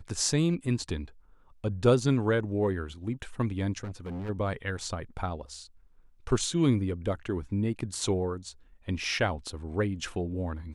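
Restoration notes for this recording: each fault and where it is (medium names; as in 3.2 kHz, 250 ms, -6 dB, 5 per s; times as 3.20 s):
3.83–4.30 s: clipped -33.5 dBFS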